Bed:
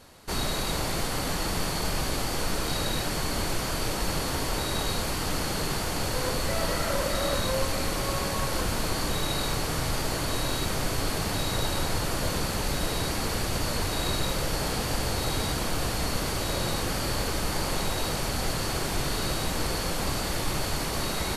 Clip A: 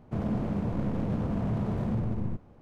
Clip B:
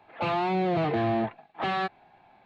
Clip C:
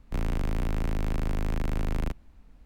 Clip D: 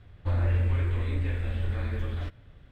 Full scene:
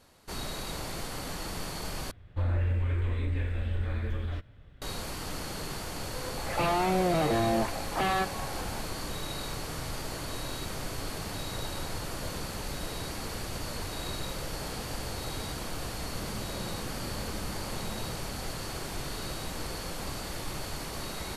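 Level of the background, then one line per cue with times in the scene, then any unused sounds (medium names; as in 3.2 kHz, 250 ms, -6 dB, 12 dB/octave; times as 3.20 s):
bed -8 dB
2.11 s: replace with D -1.5 dB + peak limiter -19.5 dBFS
6.37 s: add B -1.5 dB + level flattener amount 50%
16.04 s: add A -13.5 dB
not used: C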